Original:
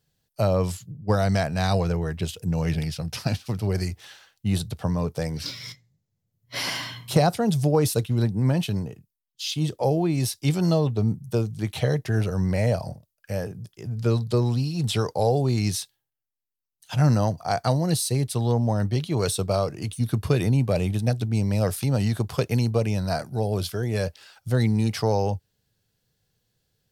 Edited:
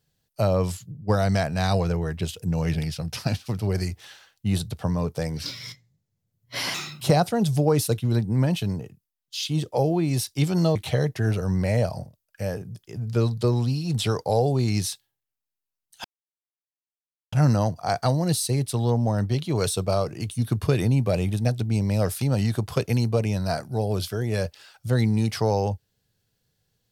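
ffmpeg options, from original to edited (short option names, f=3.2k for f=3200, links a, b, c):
-filter_complex "[0:a]asplit=5[a][b][c][d][e];[a]atrim=end=6.744[f];[b]atrim=start=6.74:end=7.07,asetpts=PTS-STARTPTS,asetrate=55125,aresample=44100,atrim=end_sample=11642,asetpts=PTS-STARTPTS[g];[c]atrim=start=7.066:end=10.822[h];[d]atrim=start=11.648:end=16.94,asetpts=PTS-STARTPTS,afade=t=out:st=5.288:d=0.004:c=hsin,apad=pad_dur=1.28[i];[e]atrim=start=16.94,asetpts=PTS-STARTPTS,afade=t=in:d=0.004:c=hsin[j];[f][g]acrossfade=d=0.004:c1=hsin:c2=hsin[k];[k][h]acrossfade=d=0.004:c1=hsin:c2=hsin[l];[i][j]concat=n=2:v=0:a=1[m];[l][m]acrossfade=d=0.004:c1=hsin:c2=hsin"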